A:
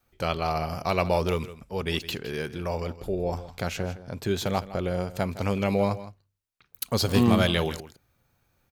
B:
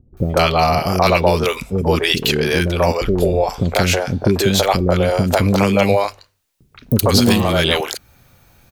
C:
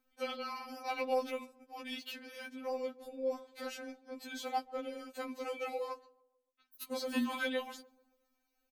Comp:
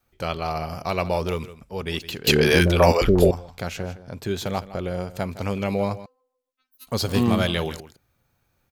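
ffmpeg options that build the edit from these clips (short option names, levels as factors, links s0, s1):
-filter_complex "[0:a]asplit=3[s0][s1][s2];[s0]atrim=end=2.272[s3];[1:a]atrim=start=2.268:end=3.312[s4];[s1]atrim=start=3.308:end=6.062[s5];[2:a]atrim=start=6.058:end=6.872[s6];[s2]atrim=start=6.868[s7];[s3][s4]acrossfade=d=0.004:c1=hsin:c2=hsin[s8];[s8][s5]acrossfade=d=0.004:c1=hsin:c2=hsin[s9];[s9][s6]acrossfade=d=0.004:c1=hsin:c2=hsin[s10];[s10][s7]acrossfade=d=0.004:c1=hsin:c2=hsin"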